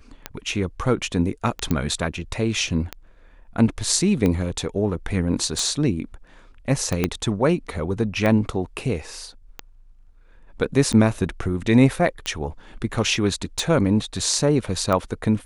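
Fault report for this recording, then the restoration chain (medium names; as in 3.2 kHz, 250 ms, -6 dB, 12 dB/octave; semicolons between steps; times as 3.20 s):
tick 45 rpm -11 dBFS
1.71 s: pop -9 dBFS
7.04 s: pop -6 dBFS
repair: de-click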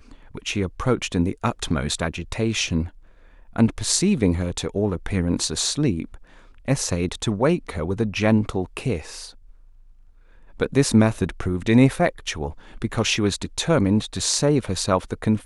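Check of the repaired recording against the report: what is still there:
7.04 s: pop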